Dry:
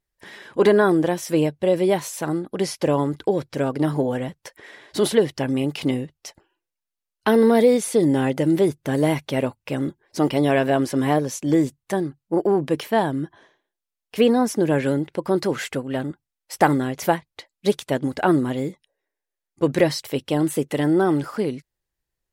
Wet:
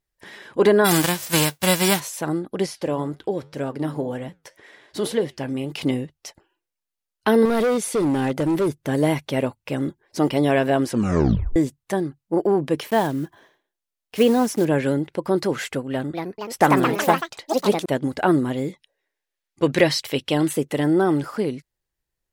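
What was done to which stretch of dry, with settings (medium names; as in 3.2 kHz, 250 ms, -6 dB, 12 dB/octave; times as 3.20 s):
0.84–1.99 s: formants flattened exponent 0.3
2.66–5.72 s: flange 1.9 Hz, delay 5.8 ms, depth 5.2 ms, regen -83%
7.45–8.76 s: hard clipper -17 dBFS
10.88 s: tape stop 0.68 s
12.86–14.67 s: block-companded coder 5-bit
15.89–18.06 s: ever faster or slower copies 245 ms, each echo +4 st, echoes 3
18.68–20.53 s: peaking EQ 3 kHz +7 dB 2.1 oct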